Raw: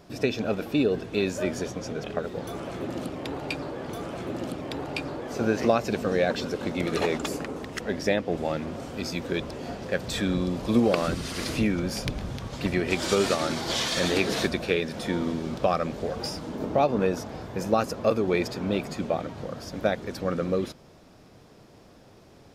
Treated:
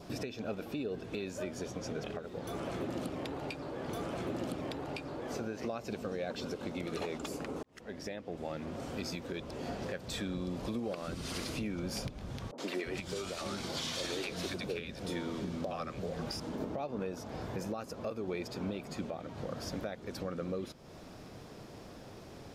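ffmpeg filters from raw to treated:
ffmpeg -i in.wav -filter_complex "[0:a]asettb=1/sr,asplit=3[link_01][link_02][link_03];[link_01]atrim=end=12.514[link_04];[link_02]atrim=start=12.51:end=16.4,asetpts=PTS-STARTPTS,afade=type=in:duration=0.004:curve=qsin,afade=type=out:start_time=3.886:duration=0.004:curve=qsin,acrossover=split=260|790[link_05][link_06][link_07];[link_07]adelay=70[link_08];[link_05]adelay=340[link_09];[link_09][link_06][link_08]amix=inputs=3:normalize=0,atrim=end_sample=171549[link_10];[link_03]atrim=start=16.396[link_11];[link_04][link_10]acrossfade=duration=0.004:curve1=hsin:curve2=qsin[link_12];[link_12][link_11]acrossfade=duration=0.004:curve1=qsin:curve2=hsin,asplit=2[link_13][link_14];[link_13]atrim=end=7.63,asetpts=PTS-STARTPTS,afade=type=out:start_time=7.626:duration=0.004:curve=hsin[link_15];[link_14]atrim=start=7.63,asetpts=PTS-STARTPTS,afade=type=in:duration=1.76[link_16];[link_15][link_16]concat=n=2:v=0:a=1,adynamicequalizer=threshold=0.00355:dfrequency=1800:dqfactor=4.2:tfrequency=1800:tqfactor=4.2:attack=5:release=100:ratio=0.375:range=2.5:mode=cutabove:tftype=bell,acompressor=threshold=-43dB:ratio=2,alimiter=level_in=5.5dB:limit=-24dB:level=0:latency=1:release=450,volume=-5.5dB,volume=3dB" out.wav

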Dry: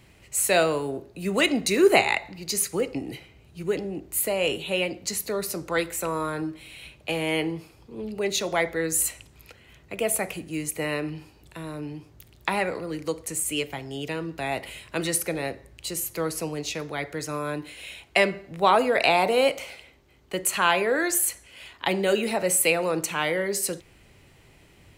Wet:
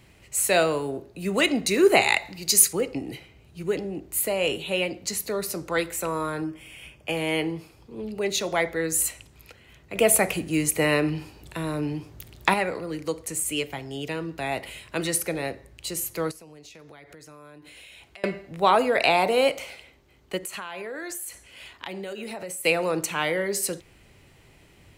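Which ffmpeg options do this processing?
ffmpeg -i in.wav -filter_complex "[0:a]asettb=1/sr,asplit=3[link_01][link_02][link_03];[link_01]atrim=end=2.014[link_04];[link_02]atrim=start=2.01:end=2.73,asetpts=PTS-STARTPTS,afade=type=in:duration=0.004:curve=qsin,afade=type=out:start_time=0.716:duration=0.004:curve=qsin,highshelf=frequency=3400:gain=10[link_05];[link_03]atrim=start=2.726[link_06];[link_04][link_05]acrossfade=duration=0.004:curve1=hsin:curve2=qsin[link_07];[link_07][link_06]acrossfade=duration=0.004:curve1=qsin:curve2=hsin,asettb=1/sr,asplit=3[link_08][link_09][link_10];[link_08]atrim=end=6.444[link_11];[link_09]atrim=start=6.44:end=7.17,asetpts=PTS-STARTPTS,afade=type=in:duration=0.004:curve=qsin,afade=type=out:start_time=0.726:duration=0.004:curve=qsin,asuperstop=centerf=4000:order=4:qfactor=3.9[link_12];[link_10]atrim=start=7.166[link_13];[link_11][link_12]acrossfade=duration=0.004:curve1=hsin:curve2=qsin[link_14];[link_14][link_13]acrossfade=duration=0.004:curve1=qsin:curve2=hsin,asettb=1/sr,asplit=3[link_15][link_16][link_17];[link_15]atrim=end=9.954[link_18];[link_16]atrim=start=9.95:end=12.54,asetpts=PTS-STARTPTS,afade=type=in:duration=0.004:curve=qsin,afade=type=out:start_time=2.586:duration=0.004:curve=qsin,acontrast=67[link_19];[link_17]atrim=start=12.536[link_20];[link_18][link_19]acrossfade=duration=0.004:curve1=hsin:curve2=qsin[link_21];[link_21][link_20]acrossfade=duration=0.004:curve1=qsin:curve2=hsin,asettb=1/sr,asplit=3[link_22][link_23][link_24];[link_22]atrim=end=16.314[link_25];[link_23]atrim=start=16.31:end=18.24,asetpts=PTS-STARTPTS,afade=type=in:duration=0.004:curve=qsin,afade=type=out:start_time=1.926:duration=0.004:curve=qsin,acompressor=threshold=-43dB:ratio=16:attack=3.2:release=140:knee=1:detection=peak[link_26];[link_24]atrim=start=18.236[link_27];[link_25][link_26]acrossfade=duration=0.004:curve1=hsin:curve2=qsin[link_28];[link_28][link_27]acrossfade=duration=0.004:curve1=qsin:curve2=hsin,asplit=3[link_29][link_30][link_31];[link_29]afade=type=out:start_time=20.37:duration=0.02[link_32];[link_30]acompressor=threshold=-31dB:ratio=12:attack=3.2:release=140:knee=1:detection=peak,afade=type=in:start_time=20.37:duration=0.02,afade=type=out:start_time=22.64:duration=0.02[link_33];[link_31]afade=type=in:start_time=22.64:duration=0.02[link_34];[link_32][link_33][link_34]amix=inputs=3:normalize=0" out.wav

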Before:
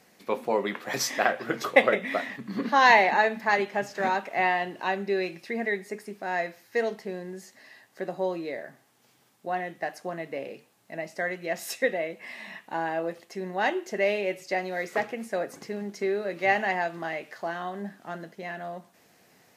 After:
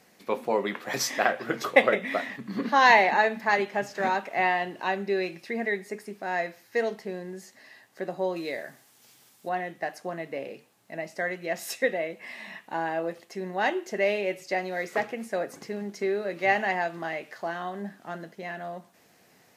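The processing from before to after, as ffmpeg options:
ffmpeg -i in.wav -filter_complex "[0:a]asettb=1/sr,asplit=3[link_01][link_02][link_03];[link_01]atrim=end=8.364[link_04];[link_02]atrim=start=8.36:end=9.49,asetpts=PTS-STARTPTS,afade=type=in:duration=0.004:curve=qsin,afade=type=out:start_time=1.126:duration=0.004:curve=qsin,highshelf=frequency=2600:gain=10.5[link_05];[link_03]atrim=start=9.486[link_06];[link_04][link_05]acrossfade=duration=0.004:curve1=hsin:curve2=qsin[link_07];[link_07][link_06]acrossfade=duration=0.004:curve1=qsin:curve2=hsin" out.wav

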